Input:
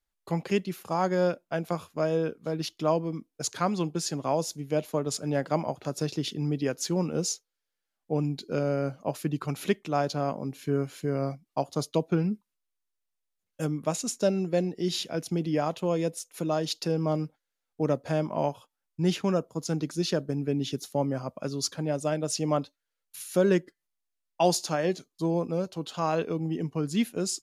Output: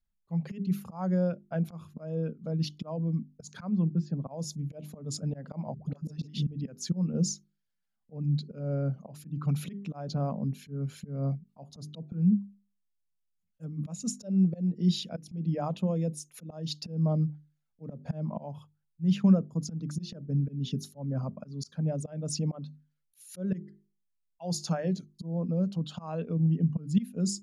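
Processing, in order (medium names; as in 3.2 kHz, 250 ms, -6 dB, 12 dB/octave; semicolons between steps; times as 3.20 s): resonances exaggerated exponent 1.5; 3.69–4.31 s: tape spacing loss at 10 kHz 40 dB; 5.74–6.47 s: phase dispersion highs, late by 108 ms, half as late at 450 Hz; hum notches 50/100/150/200/250/300/350/400 Hz; slow attack 227 ms; resonant low shelf 260 Hz +8.5 dB, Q 3; trim -4 dB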